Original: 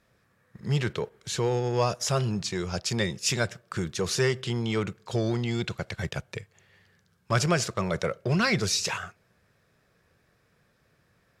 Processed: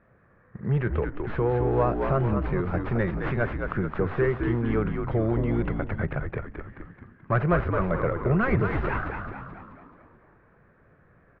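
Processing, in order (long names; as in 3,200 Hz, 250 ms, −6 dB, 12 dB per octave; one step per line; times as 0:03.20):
stylus tracing distortion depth 0.36 ms
low-pass filter 1,800 Hz 24 dB per octave
notch filter 920 Hz, Q 28
in parallel at +2.5 dB: downward compressor, threshold −39 dBFS, peak gain reduction 17.5 dB
on the sum: echo with shifted repeats 216 ms, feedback 54%, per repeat −66 Hz, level −5 dB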